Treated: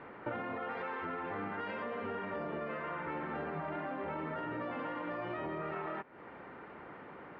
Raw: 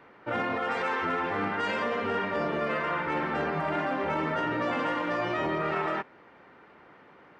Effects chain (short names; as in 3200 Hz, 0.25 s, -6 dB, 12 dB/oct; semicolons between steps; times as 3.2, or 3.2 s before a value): compressor 10:1, threshold -41 dBFS, peak gain reduction 15.5 dB; air absorption 360 m; gain +6 dB